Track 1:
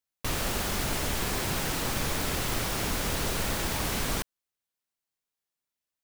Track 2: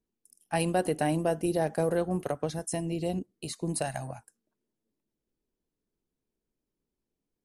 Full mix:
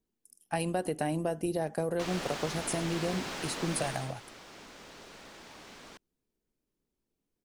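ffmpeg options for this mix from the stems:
-filter_complex "[0:a]acrossover=split=190 7300:gain=0.178 1 0.126[a][b][c];[a][b][c]amix=inputs=3:normalize=0,adelay=1750,volume=-5.5dB,afade=t=out:st=3.87:d=0.26:silence=0.251189[d];[1:a]acompressor=threshold=-30dB:ratio=3,volume=1dB[e];[d][e]amix=inputs=2:normalize=0"

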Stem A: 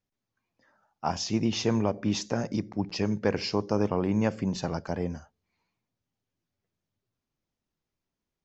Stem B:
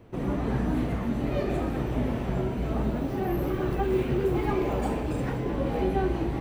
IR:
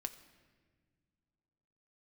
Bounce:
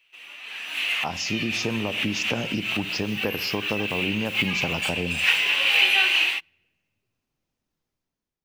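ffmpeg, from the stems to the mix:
-filter_complex "[0:a]acompressor=threshold=-28dB:ratio=6,volume=-8.5dB,asplit=3[a][b][c];[b]volume=-5.5dB[d];[1:a]dynaudnorm=f=420:g=3:m=13dB,highpass=f=2.7k:t=q:w=6.9,volume=-3dB,asplit=2[e][f];[f]volume=-22.5dB[g];[c]apad=whole_len=282570[h];[e][h]sidechaincompress=threshold=-54dB:ratio=8:attack=21:release=140[i];[2:a]atrim=start_sample=2205[j];[d][g]amix=inputs=2:normalize=0[k];[k][j]afir=irnorm=-1:irlink=0[l];[a][i][l]amix=inputs=3:normalize=0,dynaudnorm=f=650:g=3:m=10.5dB"

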